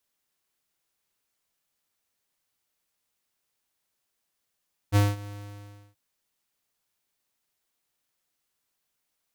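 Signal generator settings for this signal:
note with an ADSR envelope square 102 Hz, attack 39 ms, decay 199 ms, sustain −20.5 dB, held 0.35 s, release 681 ms −18 dBFS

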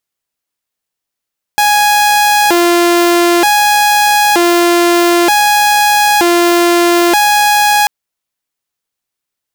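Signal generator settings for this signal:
siren hi-lo 346–831 Hz 0.54 per second saw −4.5 dBFS 6.29 s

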